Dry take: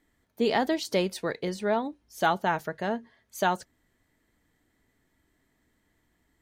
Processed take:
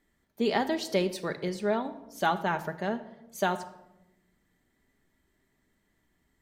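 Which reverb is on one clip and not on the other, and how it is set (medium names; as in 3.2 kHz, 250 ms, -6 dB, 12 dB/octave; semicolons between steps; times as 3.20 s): simulated room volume 3300 m³, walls furnished, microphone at 1.2 m; trim -2.5 dB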